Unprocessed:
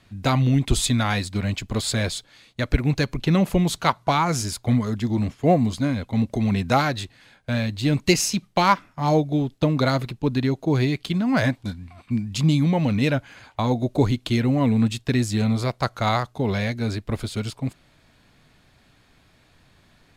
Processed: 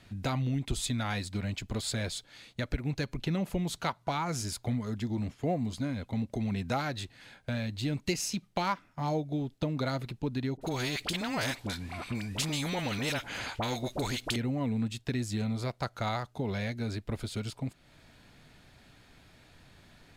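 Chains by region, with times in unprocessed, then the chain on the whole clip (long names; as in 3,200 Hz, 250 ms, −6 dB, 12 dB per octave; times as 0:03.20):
0:10.57–0:14.36: all-pass dispersion highs, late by 43 ms, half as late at 1,100 Hz + every bin compressed towards the loudest bin 2 to 1
whole clip: notch filter 1,100 Hz, Q 14; downward compressor 2 to 1, threshold −38 dBFS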